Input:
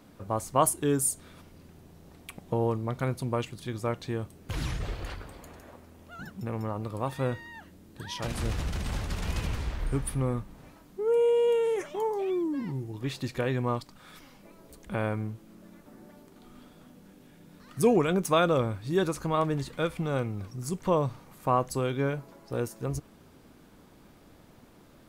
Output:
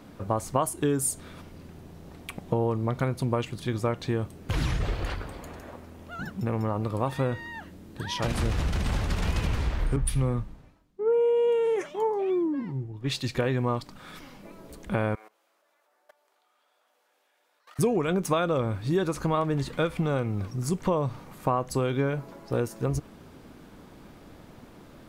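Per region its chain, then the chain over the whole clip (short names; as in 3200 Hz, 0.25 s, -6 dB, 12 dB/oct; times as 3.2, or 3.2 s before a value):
9.96–13.35 high shelf 11000 Hz -7.5 dB + three-band expander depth 100%
15.15–17.79 HPF 610 Hz 24 dB/oct + level quantiser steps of 19 dB
whole clip: high shelf 5500 Hz -6 dB; compressor 6:1, threshold -28 dBFS; gain +6.5 dB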